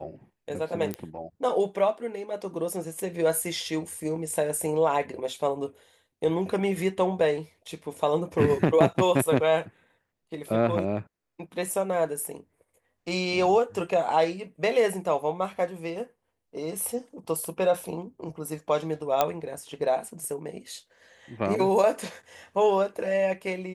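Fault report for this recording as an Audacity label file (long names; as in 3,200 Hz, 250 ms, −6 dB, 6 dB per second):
0.940000	0.940000	click −16 dBFS
19.210000	19.210000	click −8 dBFS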